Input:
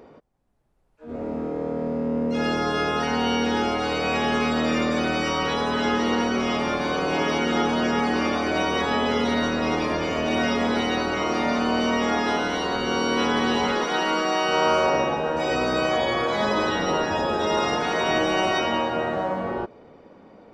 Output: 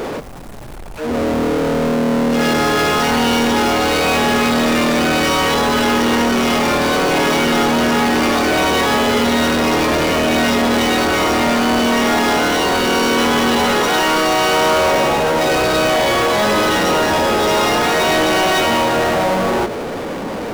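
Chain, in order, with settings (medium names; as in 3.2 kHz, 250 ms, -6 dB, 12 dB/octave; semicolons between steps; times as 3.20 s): power-law waveshaper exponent 0.35; hum notches 50/100/150/200/250 Hz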